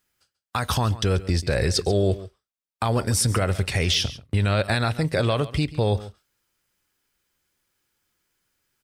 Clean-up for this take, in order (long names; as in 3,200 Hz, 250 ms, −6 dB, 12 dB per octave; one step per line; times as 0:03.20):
repair the gap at 0:03.94/0:04.31, 2.1 ms
echo removal 138 ms −16.5 dB